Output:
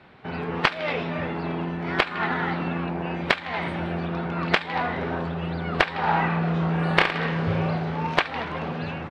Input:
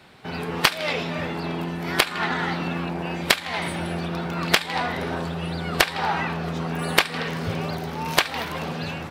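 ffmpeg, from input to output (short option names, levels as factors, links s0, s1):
-filter_complex "[0:a]lowpass=2500,asplit=3[s0][s1][s2];[s0]afade=t=out:st=6.06:d=0.02[s3];[s1]aecho=1:1:30|67.5|114.4|173|246.2:0.631|0.398|0.251|0.158|0.1,afade=t=in:st=6.06:d=0.02,afade=t=out:st=8.06:d=0.02[s4];[s2]afade=t=in:st=8.06:d=0.02[s5];[s3][s4][s5]amix=inputs=3:normalize=0"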